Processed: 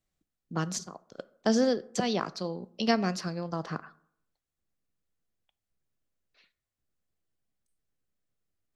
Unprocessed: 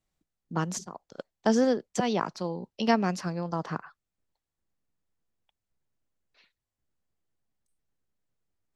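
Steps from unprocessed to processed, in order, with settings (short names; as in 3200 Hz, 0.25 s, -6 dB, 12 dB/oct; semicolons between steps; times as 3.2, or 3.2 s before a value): bell 910 Hz -8 dB 0.21 oct; reverb RT60 0.65 s, pre-delay 7 ms, DRR 17 dB; dynamic EQ 4400 Hz, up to +7 dB, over -55 dBFS, Q 2; gain -1.5 dB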